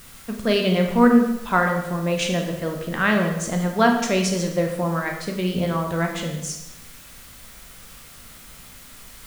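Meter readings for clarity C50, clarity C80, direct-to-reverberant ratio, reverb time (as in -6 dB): 5.5 dB, 7.5 dB, 2.5 dB, 0.95 s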